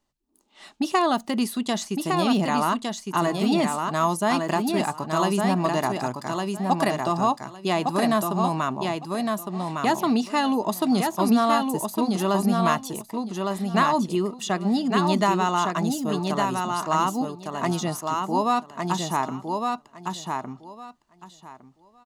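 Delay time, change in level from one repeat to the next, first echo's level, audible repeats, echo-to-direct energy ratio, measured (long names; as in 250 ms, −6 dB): 1,159 ms, −15.0 dB, −4.0 dB, 3, −4.0 dB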